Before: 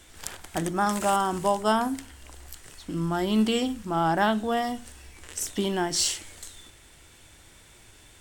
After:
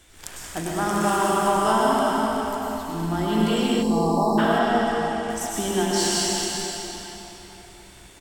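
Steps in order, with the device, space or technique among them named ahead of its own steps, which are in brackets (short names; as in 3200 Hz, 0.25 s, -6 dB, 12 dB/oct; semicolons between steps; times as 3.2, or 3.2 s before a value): cave (echo 0.375 s -9.5 dB; reverb RT60 3.9 s, pre-delay 95 ms, DRR -5.5 dB); 3.82–4.38 spectral delete 1200–3800 Hz; 4.58–5.3 Bessel low-pass 8300 Hz, order 4; non-linear reverb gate 0.47 s falling, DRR 11 dB; gain -2 dB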